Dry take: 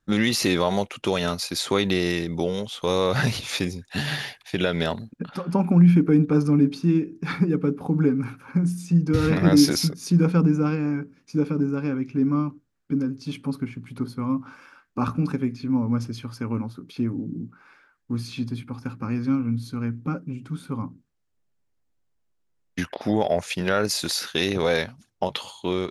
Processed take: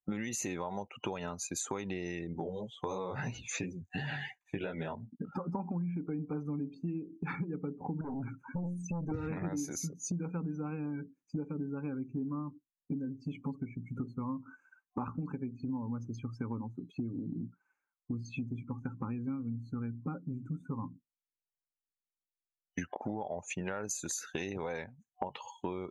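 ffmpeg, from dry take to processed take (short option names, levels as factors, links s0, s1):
-filter_complex "[0:a]asettb=1/sr,asplit=3[s0][s1][s2];[s0]atrim=end=2.334[s3];[s1]atrim=start=2.33:end=5.31,asetpts=PTS-STARTPTS,afade=t=in:d=0.004:c=qsin,afade=t=out:st=2.976:d=0.004:c=qsin,flanger=delay=15:depth=5.5:speed=2.9[s4];[s2]atrim=start=5.306[s5];[s3][s4]acrossfade=d=0.004:c1=hsin:c2=qsin[s6];[s6][s5]acrossfade=d=0.004:c1=qsin:c2=hsin,asettb=1/sr,asplit=3[s7][s8][s9];[s7]atrim=end=8.014[s10];[s8]atrim=start=8.01:end=9.12,asetpts=PTS-STARTPTS,afade=t=in:d=0.004:c=qsin,afade=t=out:st=1.106:d=0.004:c=qsin,aeval=exprs='(tanh(20*val(0)+0.25)-tanh(0.25))/20':c=same[s11];[s9]atrim=start=9.116[s12];[s10][s11]acrossfade=d=0.004:c1=hsin:c2=qsin[s13];[s13][s12]acrossfade=d=0.004:c1=qsin:c2=hsin,asettb=1/sr,asplit=3[s14][s15][s16];[s14]atrim=end=16.724[s17];[s15]atrim=start=16.72:end=17.41,asetpts=PTS-STARTPTS,afade=t=in:d=0.004:c=qsin,afade=t=out:st=0.686:d=0.004:c=qsin,aeval=exprs='val(0)+0.00141*sin(2*PI*4000*n/s)':c=same[s18];[s16]atrim=start=17.406[s19];[s17][s18]acrossfade=d=0.004:c1=hsin:c2=qsin[s20];[s20][s19]acrossfade=d=0.004:c1=qsin:c2=hsin,afftdn=nr=31:nf=-36,superequalizer=9b=2:13b=0.316:14b=0.316:15b=3.98,acompressor=threshold=0.02:ratio=10"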